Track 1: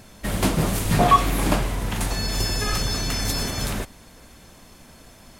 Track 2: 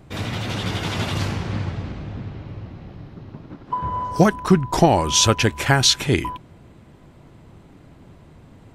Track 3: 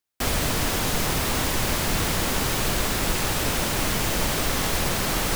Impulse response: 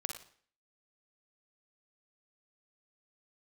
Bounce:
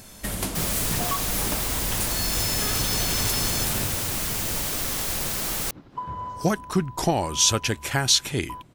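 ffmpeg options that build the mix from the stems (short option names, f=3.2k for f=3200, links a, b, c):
-filter_complex "[0:a]acompressor=threshold=-27dB:ratio=5,volume=-1dB[a];[1:a]adelay=2250,volume=-8dB[b];[2:a]adelay=350,volume=-8dB[c];[a][b][c]amix=inputs=3:normalize=0,highshelf=f=5k:g=11"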